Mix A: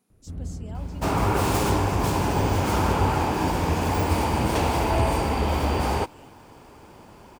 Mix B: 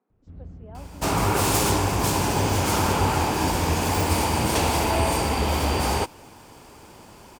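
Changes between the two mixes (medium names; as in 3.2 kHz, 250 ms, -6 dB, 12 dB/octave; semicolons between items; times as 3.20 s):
speech: add Butterworth band-pass 650 Hz, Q 0.55; first sound -7.5 dB; second sound: add peaking EQ 10 kHz +9 dB 2.7 oct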